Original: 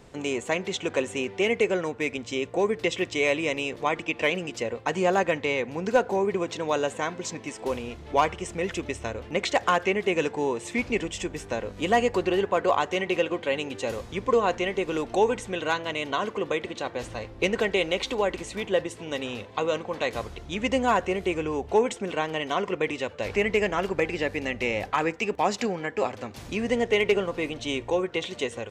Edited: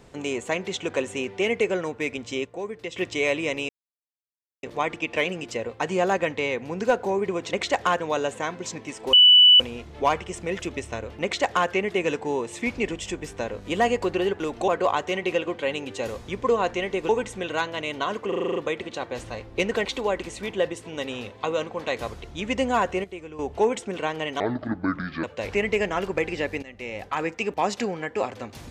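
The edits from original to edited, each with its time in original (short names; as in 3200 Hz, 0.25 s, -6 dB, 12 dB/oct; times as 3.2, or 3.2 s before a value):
2.45–2.96 gain -8.5 dB
3.69 insert silence 0.94 s
7.72 add tone 2970 Hz -9.5 dBFS 0.47 s
9.35–9.82 copy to 6.59
14.93–15.21 move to 12.52
16.4 stutter 0.04 s, 8 plays
17.69–17.99 cut
21.18–21.53 gain -11 dB
22.54–23.05 speed 61%
24.44–25.2 fade in, from -17 dB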